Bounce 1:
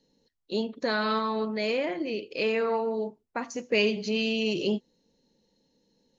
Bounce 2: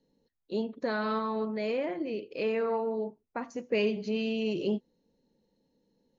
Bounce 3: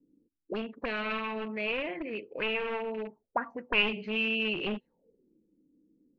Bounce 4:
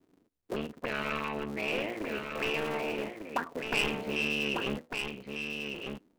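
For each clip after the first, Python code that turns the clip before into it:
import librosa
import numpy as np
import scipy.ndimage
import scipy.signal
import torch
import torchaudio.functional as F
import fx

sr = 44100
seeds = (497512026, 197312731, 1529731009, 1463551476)

y1 = fx.high_shelf(x, sr, hz=2500.0, db=-12.0)
y1 = y1 * 10.0 ** (-2.0 / 20.0)
y2 = np.minimum(y1, 2.0 * 10.0 ** (-29.5 / 20.0) - y1)
y2 = fx.envelope_lowpass(y2, sr, base_hz=300.0, top_hz=2700.0, q=7.3, full_db=-29.5, direction='up')
y2 = y2 * 10.0 ** (-3.5 / 20.0)
y3 = fx.cycle_switch(y2, sr, every=3, mode='muted')
y3 = 10.0 ** (-23.0 / 20.0) * np.tanh(y3 / 10.0 ** (-23.0 / 20.0))
y3 = y3 + 10.0 ** (-6.0 / 20.0) * np.pad(y3, (int(1199 * sr / 1000.0), 0))[:len(y3)]
y3 = y3 * 10.0 ** (2.0 / 20.0)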